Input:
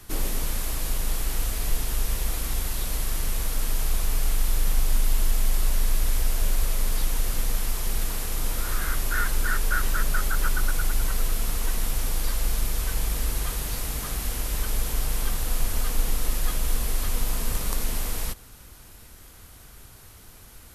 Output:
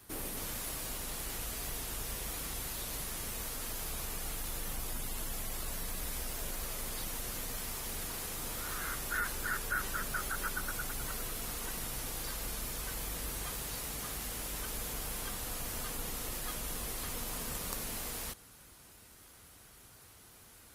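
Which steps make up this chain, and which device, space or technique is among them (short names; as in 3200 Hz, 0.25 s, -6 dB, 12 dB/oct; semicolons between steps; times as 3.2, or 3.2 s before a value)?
noise-suppressed video call (HPF 140 Hz 6 dB/oct; spectral gate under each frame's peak -30 dB strong; gain -6.5 dB; Opus 32 kbps 48000 Hz)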